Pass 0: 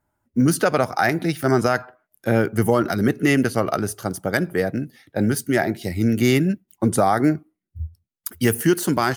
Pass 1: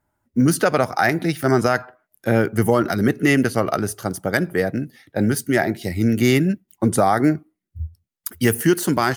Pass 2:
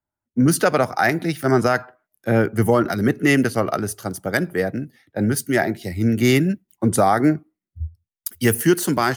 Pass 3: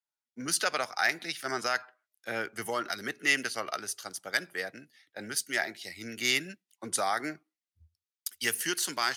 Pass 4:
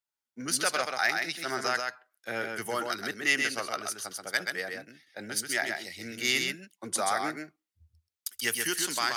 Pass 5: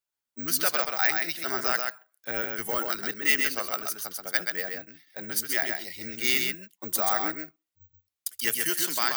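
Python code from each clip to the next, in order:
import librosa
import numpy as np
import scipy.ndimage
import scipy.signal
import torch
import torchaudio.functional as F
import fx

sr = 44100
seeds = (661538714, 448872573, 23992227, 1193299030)

y1 = fx.peak_eq(x, sr, hz=1900.0, db=2.0, octaves=0.26)
y1 = y1 * librosa.db_to_amplitude(1.0)
y2 = fx.band_widen(y1, sr, depth_pct=40)
y3 = fx.bandpass_q(y2, sr, hz=4400.0, q=0.81)
y4 = y3 + 10.0 ** (-4.5 / 20.0) * np.pad(y3, (int(130 * sr / 1000.0), 0))[:len(y3)]
y5 = (np.kron(y4[::2], np.eye(2)[0]) * 2)[:len(y4)]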